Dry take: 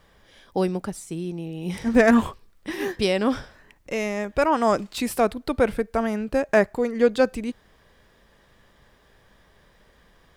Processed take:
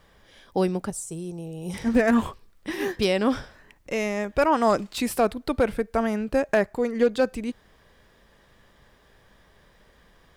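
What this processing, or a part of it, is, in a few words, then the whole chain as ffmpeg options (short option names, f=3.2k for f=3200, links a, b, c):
limiter into clipper: -filter_complex "[0:a]alimiter=limit=-8.5dB:level=0:latency=1:release=387,asoftclip=type=hard:threshold=-11dB,asettb=1/sr,asplit=3[a][b][c];[a]atrim=end=0.904[d];[b]atrim=start=0.9:end=1.74,asetpts=PTS-STARTPTS,afade=t=in:d=0.004:c=qsin,afade=t=out:st=0.836:d=0.004:c=qsin,equalizer=f=125:t=o:w=1:g=4,equalizer=f=250:t=o:w=1:g=-12,equalizer=f=500:t=o:w=1:g=4,equalizer=f=2k:t=o:w=1:g=-11,equalizer=f=4k:t=o:w=1:g=-5,equalizer=f=8k:t=o:w=1:g=8[e];[c]atrim=start=1.736[f];[d][e]acrossfade=d=0.004:c1=hsin:c2=qsin[g];[g][f]acrossfade=d=0.004:c1=qsin:c2=hsin"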